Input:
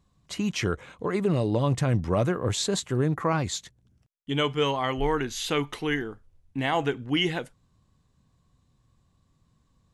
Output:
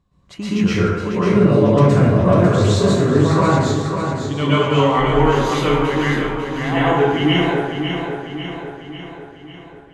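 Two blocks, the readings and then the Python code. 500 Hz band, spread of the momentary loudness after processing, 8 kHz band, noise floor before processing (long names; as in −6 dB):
+12.0 dB, 14 LU, +1.5 dB, −68 dBFS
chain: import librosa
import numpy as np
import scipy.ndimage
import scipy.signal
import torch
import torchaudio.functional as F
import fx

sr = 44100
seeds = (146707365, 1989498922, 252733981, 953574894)

p1 = fx.high_shelf(x, sr, hz=4500.0, db=-11.5)
p2 = p1 + fx.echo_feedback(p1, sr, ms=547, feedback_pct=55, wet_db=-7, dry=0)
y = fx.rev_plate(p2, sr, seeds[0], rt60_s=1.1, hf_ratio=0.55, predelay_ms=105, drr_db=-10.0)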